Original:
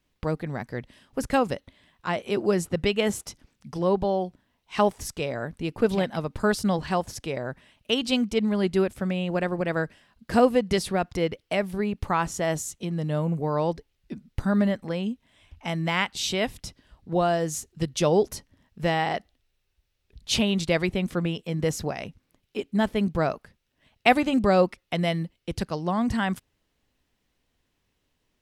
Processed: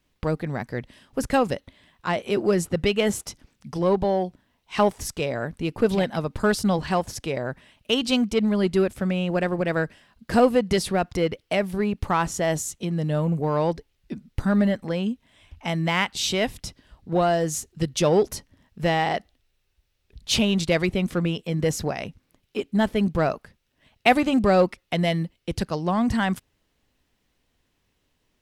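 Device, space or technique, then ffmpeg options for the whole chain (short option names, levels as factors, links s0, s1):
parallel distortion: -filter_complex "[0:a]asplit=2[s0][s1];[s1]asoftclip=type=hard:threshold=0.075,volume=0.422[s2];[s0][s2]amix=inputs=2:normalize=0"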